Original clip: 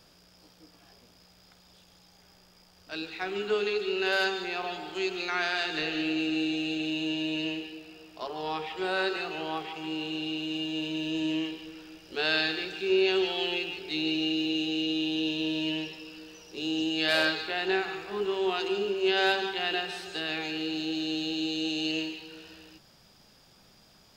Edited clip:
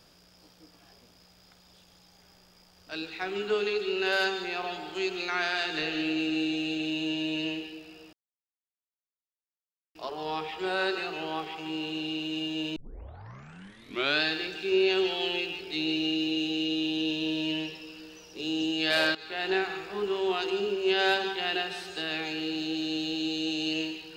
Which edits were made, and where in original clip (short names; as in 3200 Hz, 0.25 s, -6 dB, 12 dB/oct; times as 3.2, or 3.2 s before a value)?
8.13 insert silence 1.82 s
10.94 tape start 1.46 s
17.33–17.63 fade in, from -17 dB